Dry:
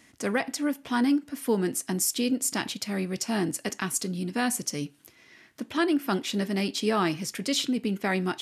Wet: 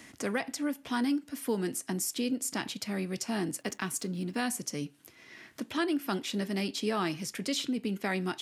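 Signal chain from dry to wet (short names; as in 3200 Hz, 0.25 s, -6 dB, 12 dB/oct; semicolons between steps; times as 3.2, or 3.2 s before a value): 3.59–4.36 backlash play -50 dBFS; three-band squash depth 40%; gain -5 dB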